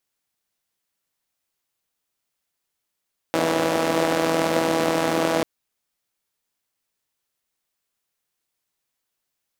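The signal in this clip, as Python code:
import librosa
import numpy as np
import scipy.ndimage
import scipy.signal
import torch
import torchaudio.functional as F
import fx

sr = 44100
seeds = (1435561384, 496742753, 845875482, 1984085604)

y = fx.engine_four(sr, seeds[0], length_s=2.09, rpm=4900, resonances_hz=(300.0, 530.0))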